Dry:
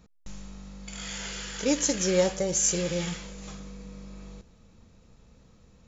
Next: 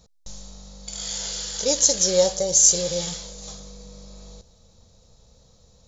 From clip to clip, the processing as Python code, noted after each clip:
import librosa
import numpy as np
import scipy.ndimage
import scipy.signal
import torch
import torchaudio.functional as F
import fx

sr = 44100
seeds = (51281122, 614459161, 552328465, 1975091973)

y = fx.curve_eq(x, sr, hz=(110.0, 300.0, 540.0, 780.0, 1300.0, 2600.0, 3900.0, 6400.0, 11000.0), db=(0, -9, 4, 2, -5, -7, 9, 9, 2))
y = y * 10.0 ** (1.5 / 20.0)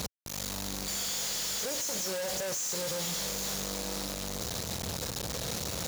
y = np.sign(x) * np.sqrt(np.mean(np.square(x)))
y = scipy.signal.sosfilt(scipy.signal.butter(2, 87.0, 'highpass', fs=sr, output='sos'), y)
y = y * 10.0 ** (-7.5 / 20.0)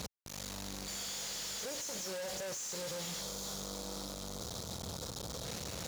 y = fx.spec_box(x, sr, start_s=3.21, length_s=2.24, low_hz=1500.0, high_hz=3100.0, gain_db=-7)
y = fx.high_shelf(y, sr, hz=12000.0, db=-8.5)
y = y * 10.0 ** (-6.0 / 20.0)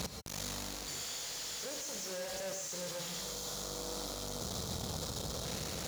y = fx.rider(x, sr, range_db=4, speed_s=0.5)
y = fx.rev_gated(y, sr, seeds[0], gate_ms=160, shape='rising', drr_db=5.5)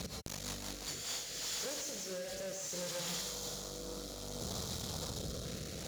y = fx.recorder_agc(x, sr, target_db=-31.0, rise_db_per_s=46.0, max_gain_db=30)
y = fx.rotary_switch(y, sr, hz=5.5, then_hz=0.6, switch_at_s=0.7)